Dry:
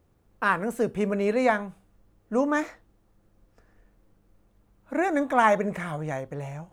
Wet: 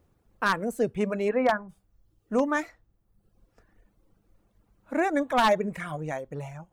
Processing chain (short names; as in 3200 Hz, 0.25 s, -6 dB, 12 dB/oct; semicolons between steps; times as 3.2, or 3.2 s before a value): 1.28–1.68 LPF 3200 Hz -> 1300 Hz 24 dB/oct; reverb removal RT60 0.89 s; wavefolder -14 dBFS